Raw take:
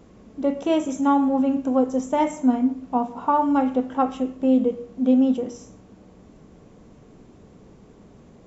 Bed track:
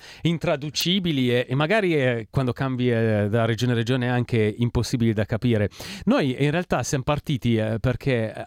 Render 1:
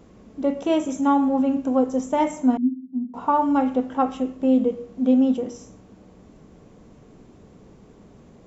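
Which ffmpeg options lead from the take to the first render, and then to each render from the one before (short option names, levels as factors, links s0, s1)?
-filter_complex "[0:a]asettb=1/sr,asplit=3[s0][s1][s2];[s0]atrim=end=2.574[s3];[s1]atrim=start=2.57:end=3.14,asetpts=PTS-STARTPTS,afade=t=in:d=0.004:c=qsin,afade=t=out:st=0.566:d=0.004:c=qsin,asuperpass=centerf=240:order=4:qfactor=4.1[s4];[s2]atrim=start=3.136[s5];[s3][s4]acrossfade=d=0.004:c1=hsin:c2=qsin[s6];[s6][s5]acrossfade=d=0.004:c1=qsin:c2=hsin"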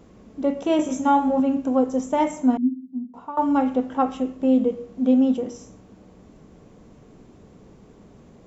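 -filter_complex "[0:a]asettb=1/sr,asplit=3[s0][s1][s2];[s0]atrim=end=0.774[s3];[s1]atrim=start=0.77:end=1.4,asetpts=PTS-STARTPTS,afade=t=in:d=0.004:c=qsin,afade=t=out:st=0.626:d=0.004:c=qsin,asplit=2[s4][s5];[s5]adelay=20,volume=0.794[s6];[s4][s6]amix=inputs=2:normalize=0,atrim=end_sample=27783[s7];[s2]atrim=start=1.396[s8];[s3][s7]acrossfade=d=0.004:c1=hsin:c2=qsin[s9];[s9][s8]acrossfade=d=0.004:c1=qsin:c2=hsin,asplit=2[s10][s11];[s10]atrim=end=3.37,asetpts=PTS-STARTPTS,afade=t=out:st=2.78:d=0.59:silence=0.11885[s12];[s11]atrim=start=3.37,asetpts=PTS-STARTPTS,afade=t=in:d=0.004:c=hsin:silence=0.11885[s13];[s12][s13]concat=n=2:v=0:a=1"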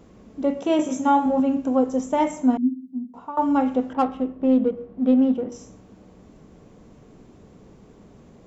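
-filter_complex "[0:a]asettb=1/sr,asplit=3[s0][s1][s2];[s0]atrim=end=0.584[s3];[s1]atrim=start=0.58:end=1.26,asetpts=PTS-STARTPTS,afade=t=in:d=0.004:c=qsin,afade=t=out:st=0.676:d=0.004:c=qsin,highpass=100[s4];[s2]atrim=start=1.256[s5];[s3][s4]acrossfade=d=0.004:c1=hsin:c2=qsin[s6];[s6][s5]acrossfade=d=0.004:c1=qsin:c2=hsin,asettb=1/sr,asplit=3[s7][s8][s9];[s7]atrim=end=3.934[s10];[s8]atrim=start=3.93:end=5.52,asetpts=PTS-STARTPTS,afade=t=in:d=0.004:c=qsin,afade=t=out:st=1.586:d=0.004:c=qsin,adynamicsmooth=sensitivity=2.5:basefreq=1800[s11];[s9]atrim=start=5.516[s12];[s10][s11]acrossfade=d=0.004:c1=hsin:c2=qsin[s13];[s13][s12]acrossfade=d=0.004:c1=qsin:c2=hsin"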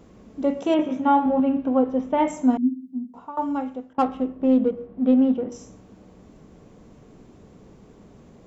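-filter_complex "[0:a]asettb=1/sr,asplit=3[s0][s1][s2];[s0]atrim=end=0.744[s3];[s1]atrim=start=0.74:end=2.28,asetpts=PTS-STARTPTS,afade=t=in:d=0.004:c=qsin,afade=t=out:st=1.536:d=0.004:c=qsin,lowpass=f=3500:w=0.5412,lowpass=f=3500:w=1.3066[s4];[s2]atrim=start=2.276[s5];[s3][s4]acrossfade=d=0.004:c1=hsin:c2=qsin[s6];[s6][s5]acrossfade=d=0.004:c1=qsin:c2=hsin,asettb=1/sr,asplit=3[s7][s8][s9];[s7]atrim=end=4.874[s10];[s8]atrim=start=4.87:end=5.51,asetpts=PTS-STARTPTS,afade=t=in:d=0.004:c=qsin,afade=t=out:st=0.636:d=0.004:c=qsin,lowpass=4700[s11];[s9]atrim=start=5.506[s12];[s10][s11]acrossfade=d=0.004:c1=hsin:c2=qsin[s13];[s13][s12]acrossfade=d=0.004:c1=qsin:c2=hsin,asplit=2[s14][s15];[s14]atrim=end=3.98,asetpts=PTS-STARTPTS,afade=t=out:st=3.01:d=0.97:silence=0.0794328[s16];[s15]atrim=start=3.98,asetpts=PTS-STARTPTS,afade=t=in:d=0.004:c=hsin:silence=0.0794328[s17];[s16][s17]concat=n=2:v=0:a=1"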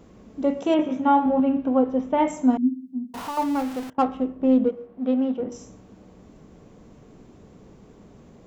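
-filter_complex "[0:a]asettb=1/sr,asplit=3[s0][s1][s2];[s0]atrim=end=3.144[s3];[s1]atrim=start=3.14:end=3.9,asetpts=PTS-STARTPTS,afade=t=in:d=0.004:c=qsin,afade=t=out:st=0.756:d=0.004:c=qsin,aeval=exprs='val(0)+0.5*0.0299*sgn(val(0))':c=same[s4];[s2]atrim=start=3.896[s5];[s3][s4]acrossfade=d=0.004:c1=hsin:c2=qsin[s6];[s6][s5]acrossfade=d=0.004:c1=qsin:c2=hsin,asettb=1/sr,asplit=3[s7][s8][s9];[s7]atrim=end=4.694[s10];[s8]atrim=start=4.69:end=5.4,asetpts=PTS-STARTPTS,afade=t=in:d=0.004:c=qsin,afade=t=out:st=0.706:d=0.004:c=qsin,lowshelf=f=250:g=-11[s11];[s9]atrim=start=5.396[s12];[s10][s11]acrossfade=d=0.004:c1=hsin:c2=qsin[s13];[s13][s12]acrossfade=d=0.004:c1=qsin:c2=hsin"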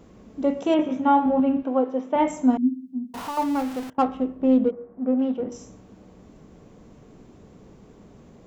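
-filter_complex "[0:a]asettb=1/sr,asplit=3[s0][s1][s2];[s0]atrim=end=1.634[s3];[s1]atrim=start=1.63:end=2.16,asetpts=PTS-STARTPTS,afade=t=in:d=0.004:c=qsin,afade=t=out:st=0.526:d=0.004:c=qsin,highpass=300[s4];[s2]atrim=start=2.156[s5];[s3][s4]acrossfade=d=0.004:c1=hsin:c2=qsin[s6];[s6][s5]acrossfade=d=0.004:c1=qsin:c2=hsin,asplit=3[s7][s8][s9];[s7]afade=t=out:st=4.7:d=0.02[s10];[s8]lowpass=f=1800:w=0.5412,lowpass=f=1800:w=1.3066,afade=t=in:st=4.7:d=0.02,afade=t=out:st=5.18:d=0.02[s11];[s9]afade=t=in:st=5.18:d=0.02[s12];[s10][s11][s12]amix=inputs=3:normalize=0"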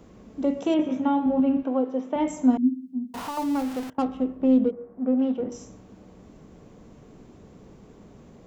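-filter_complex "[0:a]acrossover=split=450|3000[s0][s1][s2];[s1]acompressor=threshold=0.0282:ratio=3[s3];[s0][s3][s2]amix=inputs=3:normalize=0"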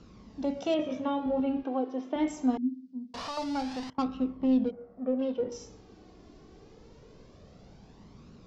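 -af "lowpass=f=4900:t=q:w=2.8,flanger=delay=0.7:depth=2.2:regen=28:speed=0.24:shape=triangular"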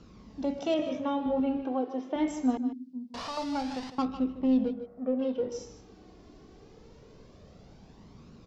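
-af "aecho=1:1:153:0.251"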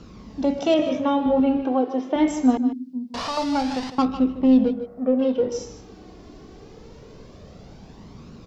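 -af "volume=2.82"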